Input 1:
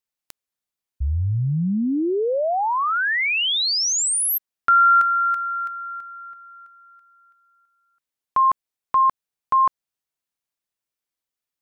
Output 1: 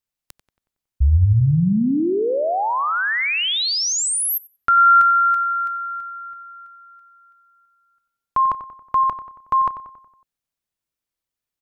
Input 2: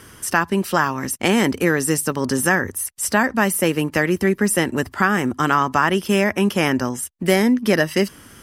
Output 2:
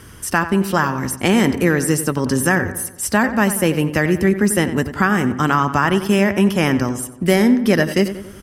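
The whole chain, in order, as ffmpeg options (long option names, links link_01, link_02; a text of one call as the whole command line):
ffmpeg -i in.wav -filter_complex "[0:a]lowshelf=frequency=160:gain=9.5,asplit=2[link_01][link_02];[link_02]adelay=92,lowpass=frequency=2900:poles=1,volume=-11.5dB,asplit=2[link_03][link_04];[link_04]adelay=92,lowpass=frequency=2900:poles=1,volume=0.53,asplit=2[link_05][link_06];[link_06]adelay=92,lowpass=frequency=2900:poles=1,volume=0.53,asplit=2[link_07][link_08];[link_08]adelay=92,lowpass=frequency=2900:poles=1,volume=0.53,asplit=2[link_09][link_10];[link_10]adelay=92,lowpass=frequency=2900:poles=1,volume=0.53,asplit=2[link_11][link_12];[link_12]adelay=92,lowpass=frequency=2900:poles=1,volume=0.53[link_13];[link_03][link_05][link_07][link_09][link_11][link_13]amix=inputs=6:normalize=0[link_14];[link_01][link_14]amix=inputs=2:normalize=0" out.wav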